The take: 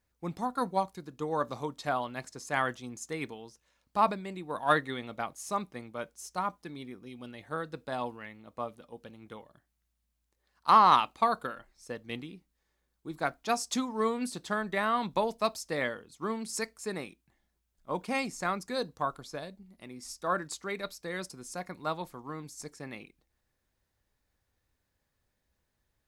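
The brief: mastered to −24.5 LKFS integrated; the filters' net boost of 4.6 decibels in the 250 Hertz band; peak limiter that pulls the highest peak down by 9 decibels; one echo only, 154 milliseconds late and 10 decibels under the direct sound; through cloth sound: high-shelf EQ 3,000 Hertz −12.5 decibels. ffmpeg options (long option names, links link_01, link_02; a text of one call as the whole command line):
ffmpeg -i in.wav -af "equalizer=frequency=250:width_type=o:gain=5.5,alimiter=limit=-19dB:level=0:latency=1,highshelf=frequency=3000:gain=-12.5,aecho=1:1:154:0.316,volume=10.5dB" out.wav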